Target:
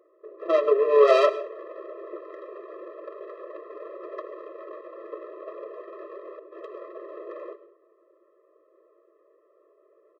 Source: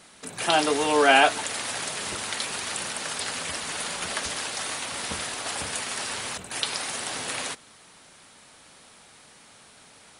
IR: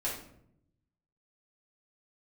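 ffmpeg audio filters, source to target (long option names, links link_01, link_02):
-filter_complex "[0:a]lowpass=1600,adynamicsmooth=sensitivity=0.5:basefreq=560,asetrate=42845,aresample=44100,atempo=1.0293,asplit=2[link_01][link_02];[1:a]atrim=start_sample=2205,asetrate=57330,aresample=44100,adelay=98[link_03];[link_02][link_03]afir=irnorm=-1:irlink=0,volume=-17.5dB[link_04];[link_01][link_04]amix=inputs=2:normalize=0,afftfilt=real='re*eq(mod(floor(b*sr/1024/340),2),1)':imag='im*eq(mod(floor(b*sr/1024/340),2),1)':win_size=1024:overlap=0.75,volume=7dB"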